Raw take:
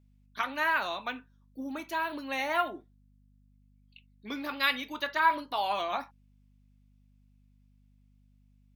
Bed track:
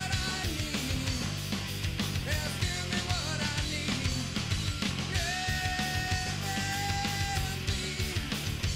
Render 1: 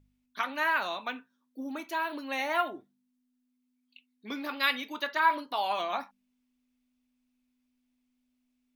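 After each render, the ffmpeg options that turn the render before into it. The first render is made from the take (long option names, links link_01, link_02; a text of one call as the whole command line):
ffmpeg -i in.wav -af "bandreject=frequency=50:width_type=h:width=4,bandreject=frequency=100:width_type=h:width=4,bandreject=frequency=150:width_type=h:width=4,bandreject=frequency=200:width_type=h:width=4" out.wav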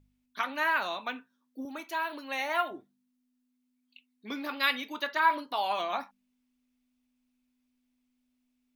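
ffmpeg -i in.wav -filter_complex "[0:a]asettb=1/sr,asplit=3[link_01][link_02][link_03];[link_01]atrim=end=1.654[link_04];[link_02]atrim=start=1.65:end=2.71,asetpts=PTS-STARTPTS,afade=type=in:duration=0.004:curve=qsin,afade=type=out:start_time=1.056:duration=0.004:curve=qsin,highpass=frequency=410:poles=1[link_05];[link_03]atrim=start=2.706[link_06];[link_04][link_05]acrossfade=duration=0.004:curve1=hsin:curve2=qsin[link_07];[link_07][link_06]acrossfade=duration=0.004:curve1=qsin:curve2=hsin" out.wav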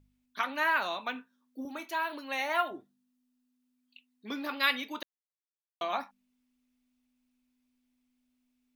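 ffmpeg -i in.wav -filter_complex "[0:a]asettb=1/sr,asplit=3[link_01][link_02][link_03];[link_01]atrim=end=1.134[link_04];[link_02]atrim=start=1.13:end=1.89,asetpts=PTS-STARTPTS,afade=type=in:duration=0.004:curve=qsin,afade=type=out:start_time=0.756:duration=0.004:curve=qsin,asplit=2[link_05][link_06];[link_06]adelay=24,volume=-10.5dB[link_07];[link_05][link_07]amix=inputs=2:normalize=0,atrim=end_sample=33516[link_08];[link_03]atrim=start=1.886[link_09];[link_04][link_08]acrossfade=duration=0.004:curve1=hsin:curve2=qsin[link_10];[link_10][link_09]acrossfade=duration=0.004:curve1=qsin:curve2=hsin,asettb=1/sr,asplit=3[link_11][link_12][link_13];[link_11]atrim=end=2.604[link_14];[link_12]atrim=start=2.6:end=4.46,asetpts=PTS-STARTPTS,afade=type=in:duration=0.004:curve=qsin,afade=type=out:start_time=1.856:duration=0.004:curve=qsin,bandreject=frequency=2200:width=12[link_15];[link_13]atrim=start=4.456[link_16];[link_14][link_15]acrossfade=duration=0.004:curve1=hsin:curve2=qsin[link_17];[link_17][link_16]acrossfade=duration=0.004:curve1=qsin:curve2=hsin,asplit=3[link_18][link_19][link_20];[link_18]atrim=end=5.03,asetpts=PTS-STARTPTS,afade=type=out:start_time=5.026:duration=0.004:curve=hsin[link_21];[link_19]atrim=start=5.03:end=5.81,asetpts=PTS-STARTPTS,volume=0[link_22];[link_20]atrim=start=5.81,asetpts=PTS-STARTPTS,afade=type=in:duration=0.004:curve=hsin[link_23];[link_21][link_22][link_23]concat=n=3:v=0:a=1" out.wav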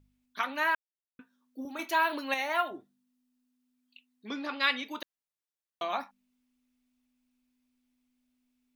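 ffmpeg -i in.wav -filter_complex "[0:a]asplit=3[link_01][link_02][link_03];[link_01]afade=type=out:start_time=4.27:duration=0.02[link_04];[link_02]lowpass=frequency=8400:width=0.5412,lowpass=frequency=8400:width=1.3066,afade=type=in:start_time=4.27:duration=0.02,afade=type=out:start_time=4.84:duration=0.02[link_05];[link_03]afade=type=in:start_time=4.84:duration=0.02[link_06];[link_04][link_05][link_06]amix=inputs=3:normalize=0,asplit=5[link_07][link_08][link_09][link_10][link_11];[link_07]atrim=end=0.75,asetpts=PTS-STARTPTS,afade=type=out:start_time=0.746:duration=0.004:curve=hsin[link_12];[link_08]atrim=start=0.75:end=1.19,asetpts=PTS-STARTPTS,volume=0[link_13];[link_09]atrim=start=1.19:end=1.792,asetpts=PTS-STARTPTS,afade=type=in:duration=0.004:curve=hsin[link_14];[link_10]atrim=start=1.788:end=2.342,asetpts=PTS-STARTPTS,volume=6dB[link_15];[link_11]atrim=start=2.338[link_16];[link_12][link_13][link_14]concat=n=3:v=0:a=1[link_17];[link_17][link_15]acrossfade=duration=0.004:curve1=hsin:curve2=hsin[link_18];[link_18][link_16]acrossfade=duration=0.004:curve1=hsin:curve2=hsin" out.wav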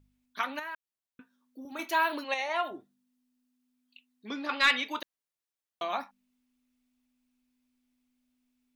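ffmpeg -i in.wav -filter_complex "[0:a]asettb=1/sr,asplit=3[link_01][link_02][link_03];[link_01]atrim=end=0.594[link_04];[link_02]atrim=start=0.59:end=1.72,asetpts=PTS-STARTPTS,afade=type=in:duration=0.004:curve=qsin,afade=type=out:start_time=1.126:duration=0.004:curve=qsin,acompressor=threshold=-45dB:ratio=2:attack=3.2:release=140:knee=1:detection=peak[link_05];[link_03]atrim=start=1.716[link_06];[link_04][link_05]acrossfade=duration=0.004:curve1=hsin:curve2=qsin[link_07];[link_07][link_06]acrossfade=duration=0.004:curve1=qsin:curve2=hsin,asplit=3[link_08][link_09][link_10];[link_08]afade=type=out:start_time=2.23:duration=0.02[link_11];[link_09]highpass=260,equalizer=frequency=280:width_type=q:width=4:gain=-8,equalizer=frequency=420:width_type=q:width=4:gain=8,equalizer=frequency=1500:width_type=q:width=4:gain=-7,lowpass=frequency=8000:width=0.5412,lowpass=frequency=8000:width=1.3066,afade=type=in:start_time=2.23:duration=0.02,afade=type=out:start_time=2.63:duration=0.02[link_12];[link_10]afade=type=in:start_time=2.63:duration=0.02[link_13];[link_11][link_12][link_13]amix=inputs=3:normalize=0,asettb=1/sr,asplit=3[link_14][link_15][link_16];[link_14]atrim=end=4.494[link_17];[link_15]atrim=start=4.49:end=5,asetpts=PTS-STARTPTS,afade=type=in:duration=0.004:curve=qsin,afade=type=out:start_time=0.506:duration=0.004:curve=qsin,asplit=2[link_18][link_19];[link_19]highpass=frequency=720:poles=1,volume=12dB,asoftclip=type=tanh:threshold=-11.5dB[link_20];[link_18][link_20]amix=inputs=2:normalize=0,lowpass=frequency=4700:poles=1,volume=-6dB[link_21];[link_16]atrim=start=4.996[link_22];[link_17][link_21]acrossfade=duration=0.004:curve1=hsin:curve2=qsin[link_23];[link_23][link_22]acrossfade=duration=0.004:curve1=qsin:curve2=hsin" out.wav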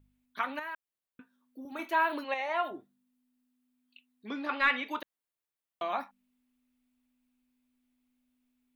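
ffmpeg -i in.wav -filter_complex "[0:a]acrossover=split=2700[link_01][link_02];[link_02]acompressor=threshold=-47dB:ratio=4:attack=1:release=60[link_03];[link_01][link_03]amix=inputs=2:normalize=0,equalizer=frequency=5600:width_type=o:width=0.99:gain=-6" out.wav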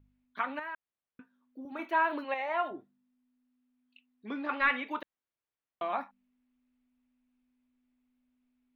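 ffmpeg -i in.wav -af "bass=frequency=250:gain=1,treble=frequency=4000:gain=-15" out.wav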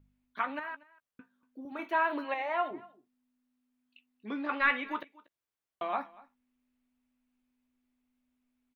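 ffmpeg -i in.wav -filter_complex "[0:a]asplit=2[link_01][link_02];[link_02]adelay=14,volume=-12.5dB[link_03];[link_01][link_03]amix=inputs=2:normalize=0,aecho=1:1:238:0.075" out.wav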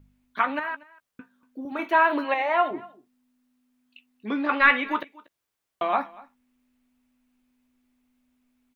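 ffmpeg -i in.wav -af "volume=9dB" out.wav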